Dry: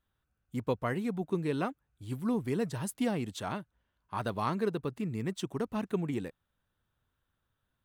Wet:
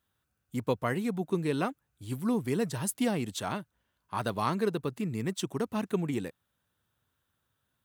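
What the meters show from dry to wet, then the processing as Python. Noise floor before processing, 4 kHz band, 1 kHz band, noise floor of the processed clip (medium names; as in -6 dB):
-82 dBFS, +4.5 dB, +2.5 dB, -80 dBFS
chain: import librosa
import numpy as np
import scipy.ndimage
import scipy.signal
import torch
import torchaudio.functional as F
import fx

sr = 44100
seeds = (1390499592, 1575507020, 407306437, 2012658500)

y = scipy.signal.sosfilt(scipy.signal.butter(2, 78.0, 'highpass', fs=sr, output='sos'), x)
y = fx.high_shelf(y, sr, hz=4400.0, db=6.5)
y = F.gain(torch.from_numpy(y), 2.0).numpy()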